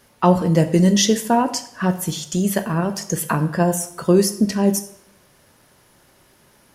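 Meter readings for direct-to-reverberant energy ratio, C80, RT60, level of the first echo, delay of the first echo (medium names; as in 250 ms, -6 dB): 8.0 dB, 16.0 dB, 0.70 s, no echo, no echo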